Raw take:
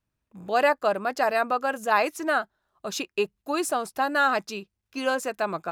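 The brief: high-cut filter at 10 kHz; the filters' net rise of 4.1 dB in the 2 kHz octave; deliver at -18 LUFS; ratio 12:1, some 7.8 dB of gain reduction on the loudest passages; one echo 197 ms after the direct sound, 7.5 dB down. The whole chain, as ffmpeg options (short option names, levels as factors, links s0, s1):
-af "lowpass=10000,equalizer=f=2000:t=o:g=5.5,acompressor=threshold=0.0794:ratio=12,aecho=1:1:197:0.422,volume=3.16"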